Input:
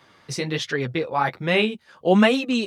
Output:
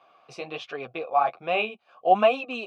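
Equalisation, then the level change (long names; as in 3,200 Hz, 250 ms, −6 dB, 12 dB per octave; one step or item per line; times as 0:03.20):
formant filter a
+8.0 dB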